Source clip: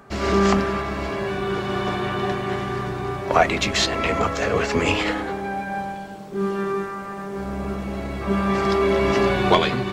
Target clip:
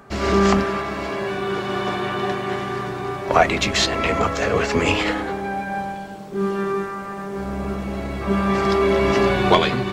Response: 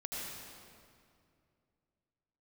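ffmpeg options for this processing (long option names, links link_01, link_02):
-filter_complex "[0:a]asettb=1/sr,asplit=3[link_01][link_02][link_03];[link_01]atrim=end=0.634[link_04];[link_02]atrim=start=0.63:end=3.29,asetpts=PTS-STARTPTS,afade=type=in:duration=0.004:curve=qsin,afade=type=out:start_time=2.656:duration=0.004:curve=qsin,highpass=frequency=170:poles=1[link_05];[link_03]atrim=start=3.286[link_06];[link_04][link_05]acrossfade=duration=0.004:curve1=hsin:curve2=qsin[link_07];[link_07][link_06]acrossfade=duration=0.004:curve1=qsin:curve2=hsin,volume=1.5dB"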